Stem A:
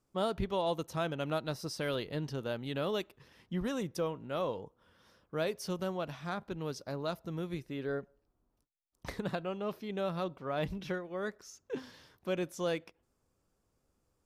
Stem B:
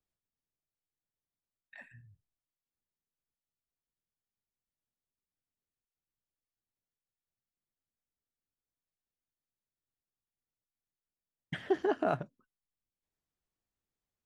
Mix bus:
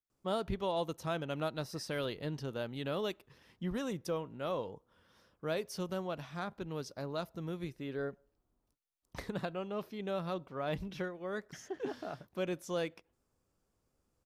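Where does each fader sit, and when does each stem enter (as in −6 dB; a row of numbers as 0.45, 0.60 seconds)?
−2.0, −12.0 decibels; 0.10, 0.00 seconds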